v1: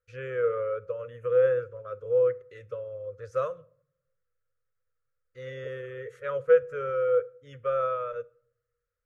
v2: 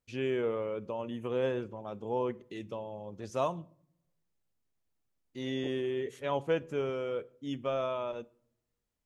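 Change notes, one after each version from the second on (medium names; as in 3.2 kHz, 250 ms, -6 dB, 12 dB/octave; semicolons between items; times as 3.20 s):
master: remove FFT filter 130 Hz 0 dB, 190 Hz -23 dB, 340 Hz -22 dB, 500 Hz +13 dB, 810 Hz -28 dB, 1.3 kHz +12 dB, 3.1 kHz -11 dB, 4.9 kHz -9 dB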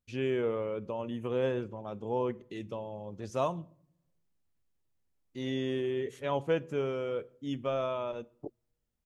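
second voice: entry +2.80 s; master: add bass shelf 200 Hz +4 dB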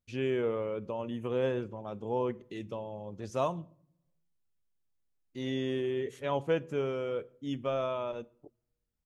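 second voice -12.0 dB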